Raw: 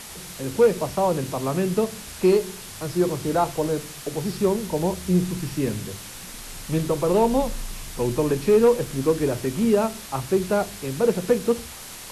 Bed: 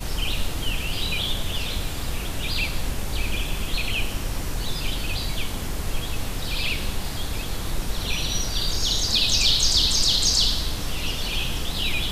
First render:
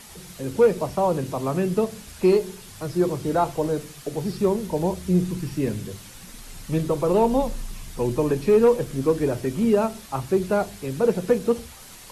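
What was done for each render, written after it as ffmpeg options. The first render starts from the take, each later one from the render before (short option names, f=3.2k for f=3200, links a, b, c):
-af "afftdn=nr=7:nf=-39"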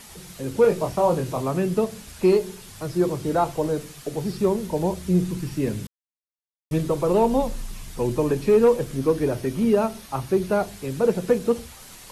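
-filter_complex "[0:a]asettb=1/sr,asplit=3[a][b][c];[a]atrim=end=0.624[d];[b]atrim=start=0.62:end=1.42,asetpts=PTS-STARTPTS,afade=t=in:d=0.004:c=qsin,afade=t=out:st=0.796:d=0.004:c=qsin,asplit=2[e][f];[f]adelay=24,volume=-4.5dB[g];[e][g]amix=inputs=2:normalize=0,atrim=end_sample=35280[h];[c]atrim=start=1.416[i];[d][h]acrossfade=d=0.004:c1=hsin:c2=qsin[j];[j][i]acrossfade=d=0.004:c1=qsin:c2=hsin,asettb=1/sr,asplit=3[k][l][m];[k]atrim=end=8.974[n];[l]atrim=start=8.97:end=10.68,asetpts=PTS-STARTPTS,afade=t=in:d=0.004:c=qsin,afade=t=out:st=1.706:d=0.004:c=qsin,bandreject=f=7.5k:w=7.7[o];[m]atrim=start=10.676[p];[n][o]acrossfade=d=0.004:c1=hsin:c2=qsin[q];[q][p]acrossfade=d=0.004:c1=qsin:c2=hsin,asplit=3[r][s][t];[r]atrim=end=5.87,asetpts=PTS-STARTPTS,afade=t=out:st=5.866:d=0.004:c=hsin[u];[s]atrim=start=5.87:end=6.71,asetpts=PTS-STARTPTS,volume=0[v];[t]atrim=start=6.71,asetpts=PTS-STARTPTS,afade=t=in:d=0.004:c=hsin[w];[u][v][w]concat=n=3:v=0:a=1"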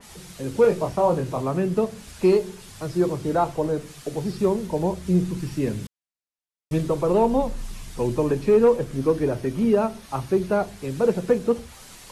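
-af "lowpass=11k,adynamicequalizer=threshold=0.00891:dfrequency=2400:dqfactor=0.7:tfrequency=2400:tqfactor=0.7:attack=5:release=100:ratio=0.375:range=3:mode=cutabove:tftype=highshelf"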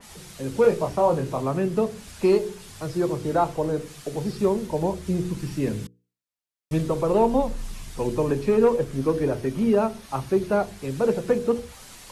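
-af "bandreject=f=60:t=h:w=6,bandreject=f=120:t=h:w=6,bandreject=f=180:t=h:w=6,bandreject=f=240:t=h:w=6,bandreject=f=300:t=h:w=6,bandreject=f=360:t=h:w=6,bandreject=f=420:t=h:w=6,bandreject=f=480:t=h:w=6"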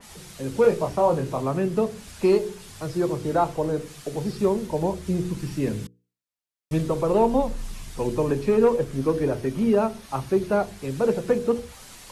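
-af anull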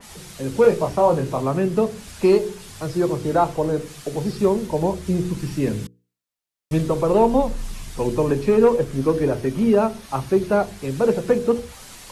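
-af "volume=3.5dB"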